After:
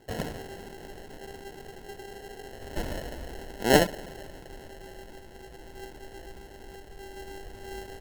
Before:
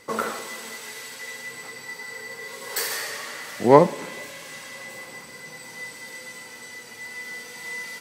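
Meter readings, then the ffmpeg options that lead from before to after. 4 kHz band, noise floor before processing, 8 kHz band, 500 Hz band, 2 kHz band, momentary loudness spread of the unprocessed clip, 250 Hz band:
-2.5 dB, -43 dBFS, -7.0 dB, -7.5 dB, -6.0 dB, 16 LU, -5.0 dB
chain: -af "acrusher=samples=37:mix=1:aa=0.000001,asubboost=boost=5.5:cutoff=61,volume=0.501"

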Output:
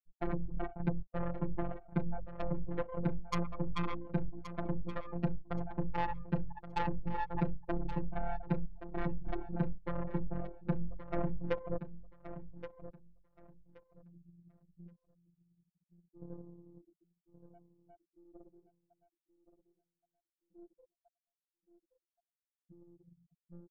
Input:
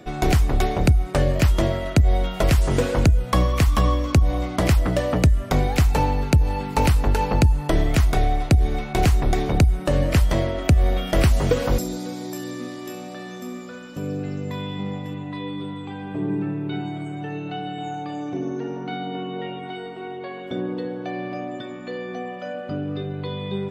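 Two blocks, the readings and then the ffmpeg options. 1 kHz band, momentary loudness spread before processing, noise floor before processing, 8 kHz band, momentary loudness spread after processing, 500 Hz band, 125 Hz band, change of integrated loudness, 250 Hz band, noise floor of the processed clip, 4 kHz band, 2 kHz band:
-15.5 dB, 13 LU, -35 dBFS, under -30 dB, 14 LU, -17.5 dB, -20.0 dB, -16.5 dB, -15.0 dB, under -85 dBFS, -25.5 dB, -19.0 dB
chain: -filter_complex "[0:a]afftfilt=real='re*gte(hypot(re,im),0.355)':imag='im*gte(hypot(re,im),0.355)':win_size=1024:overlap=0.75,lowpass=f=1700:t=q:w=1.9,aresample=8000,asoftclip=type=tanh:threshold=0.299,aresample=44100,aeval=exprs='0.266*(cos(1*acos(clip(val(0)/0.266,-1,1)))-cos(1*PI/2))+0.0668*(cos(3*acos(clip(val(0)/0.266,-1,1)))-cos(3*PI/2))+0.0596*(cos(6*acos(clip(val(0)/0.266,-1,1)))-cos(6*PI/2))+0.0299*(cos(8*acos(clip(val(0)/0.266,-1,1)))-cos(8*PI/2))':c=same,afftfilt=real='hypot(re,im)*cos(PI*b)':imag='0':win_size=1024:overlap=0.75,asplit=2[s0][s1];[s1]aecho=0:1:1124|2248|3372:0.251|0.0527|0.0111[s2];[s0][s2]amix=inputs=2:normalize=0,volume=0.398"

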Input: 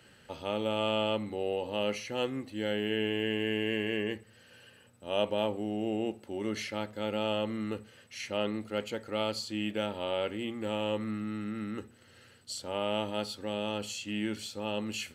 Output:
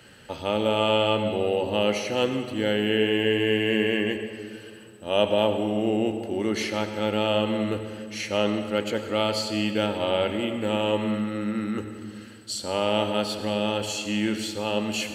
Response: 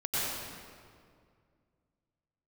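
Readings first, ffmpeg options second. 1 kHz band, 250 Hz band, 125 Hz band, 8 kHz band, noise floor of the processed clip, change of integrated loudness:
+8.5 dB, +8.0 dB, +8.5 dB, +8.0 dB, -45 dBFS, +8.0 dB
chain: -filter_complex "[0:a]asplit=2[s0][s1];[1:a]atrim=start_sample=2205,asetrate=48510,aresample=44100[s2];[s1][s2]afir=irnorm=-1:irlink=0,volume=0.2[s3];[s0][s3]amix=inputs=2:normalize=0,volume=2.11"

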